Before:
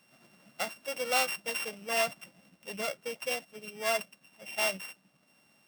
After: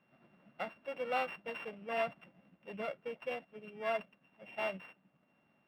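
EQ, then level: distance through air 490 m; -2.0 dB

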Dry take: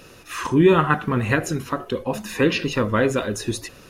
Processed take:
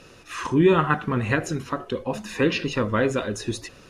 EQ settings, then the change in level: low-pass 8.6 kHz 12 dB/octave; -2.5 dB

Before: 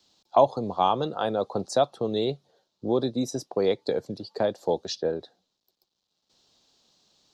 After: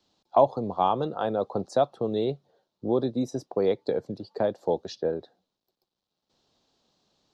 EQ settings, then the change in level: treble shelf 2.8 kHz -11.5 dB; 0.0 dB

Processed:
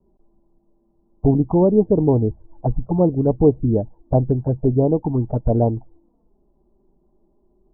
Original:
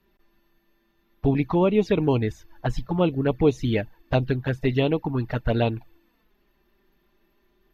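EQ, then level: steep low-pass 870 Hz 36 dB/octave; distance through air 420 m; +6.0 dB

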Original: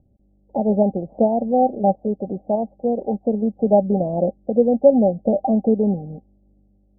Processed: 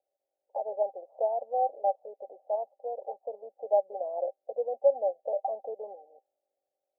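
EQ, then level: steep high-pass 530 Hz 36 dB/octave; -8.0 dB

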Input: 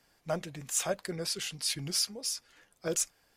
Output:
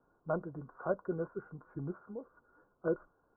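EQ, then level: rippled Chebyshev low-pass 1.5 kHz, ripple 6 dB; +3.0 dB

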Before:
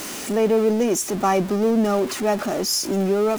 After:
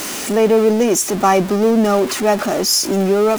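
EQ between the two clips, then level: bass shelf 420 Hz -3 dB; +7.0 dB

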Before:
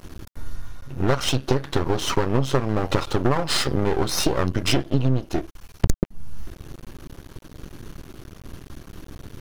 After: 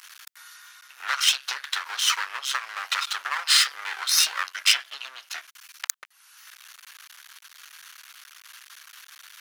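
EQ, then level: high-pass 1.4 kHz 24 dB/octave; +6.0 dB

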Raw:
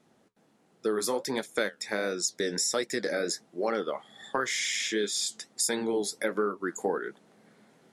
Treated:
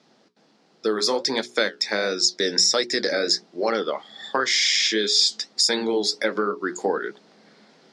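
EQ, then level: high-pass 170 Hz 12 dB/octave; resonant low-pass 4.9 kHz, resonance Q 3.2; hum notches 60/120/180/240/300/360/420 Hz; +6.0 dB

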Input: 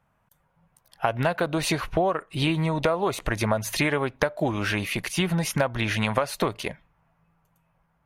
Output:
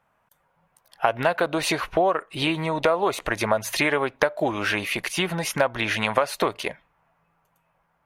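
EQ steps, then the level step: tone controls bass -11 dB, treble -3 dB; +3.5 dB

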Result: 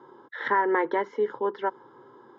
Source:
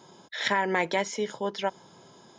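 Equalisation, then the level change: Chebyshev band-pass 130–2400 Hz, order 3; static phaser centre 660 Hz, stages 6; +6.0 dB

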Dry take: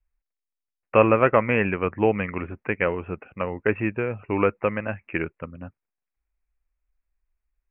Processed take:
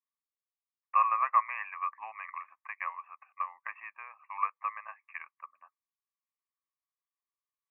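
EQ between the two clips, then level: ladder high-pass 1.1 kHz, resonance 85%; static phaser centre 2.1 kHz, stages 8; 0.0 dB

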